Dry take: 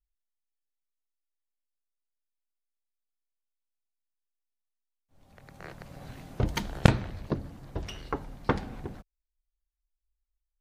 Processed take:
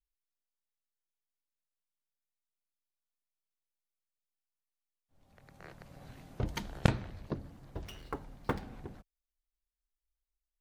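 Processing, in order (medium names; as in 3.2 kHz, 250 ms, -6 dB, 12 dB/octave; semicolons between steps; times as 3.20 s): 7.45–8.62 s: dead-time distortion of 0.056 ms; trim -7 dB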